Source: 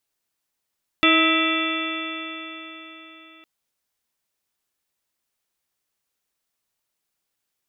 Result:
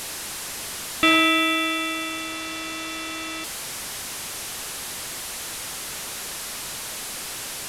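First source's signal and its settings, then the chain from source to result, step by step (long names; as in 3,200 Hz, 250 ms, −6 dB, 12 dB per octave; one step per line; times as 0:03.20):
stiff-string partials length 2.41 s, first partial 320 Hz, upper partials −7/−19.5/−1/−18/−3.5/−4/−0.5/−16.5/−1.5 dB, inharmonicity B 0.0017, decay 4.16 s, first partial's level −18.5 dB
linear delta modulator 64 kbit/s, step −25.5 dBFS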